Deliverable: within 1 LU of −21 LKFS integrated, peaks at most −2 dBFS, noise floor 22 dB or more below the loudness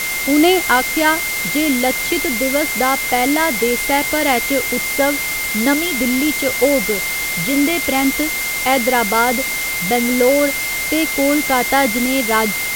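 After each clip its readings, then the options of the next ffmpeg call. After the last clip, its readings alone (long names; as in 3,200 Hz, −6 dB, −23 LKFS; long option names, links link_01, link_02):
interfering tone 2,100 Hz; level of the tone −21 dBFS; background noise floor −21 dBFS; target noise floor −38 dBFS; integrated loudness −15.5 LKFS; sample peak −2.0 dBFS; target loudness −21.0 LKFS
→ -af "bandreject=frequency=2100:width=30"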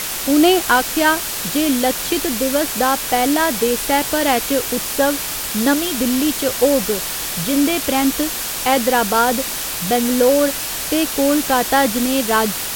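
interfering tone none found; background noise floor −25 dBFS; target noise floor −39 dBFS
→ -af "afftdn=noise_reduction=14:noise_floor=-25"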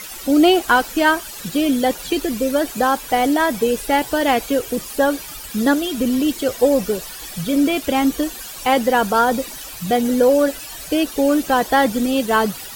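background noise floor −34 dBFS; target noise floor −41 dBFS
→ -af "afftdn=noise_reduction=7:noise_floor=-34"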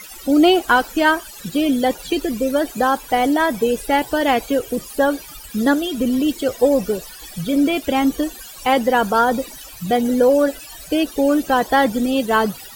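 background noise floor −38 dBFS; target noise floor −41 dBFS
→ -af "afftdn=noise_reduction=6:noise_floor=-38"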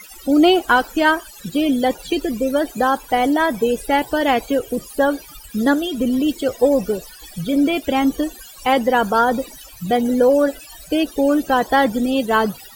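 background noise floor −41 dBFS; integrated loudness −18.5 LKFS; sample peak −3.0 dBFS; target loudness −21.0 LKFS
→ -af "volume=-2.5dB"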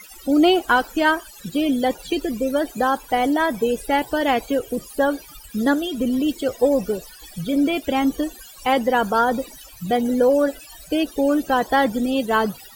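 integrated loudness −21.0 LKFS; sample peak −5.5 dBFS; background noise floor −43 dBFS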